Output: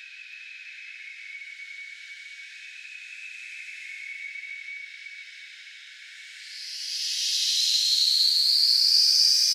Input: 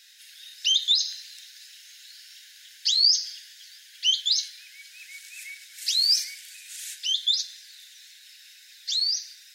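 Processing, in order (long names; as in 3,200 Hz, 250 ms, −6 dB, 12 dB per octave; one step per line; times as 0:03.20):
low-pass that shuts in the quiet parts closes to 1,900 Hz, open at −24 dBFS
extreme stretch with random phases 7.7×, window 0.25 s, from 0:04.94
single-tap delay 330 ms −6 dB
one half of a high-frequency compander encoder only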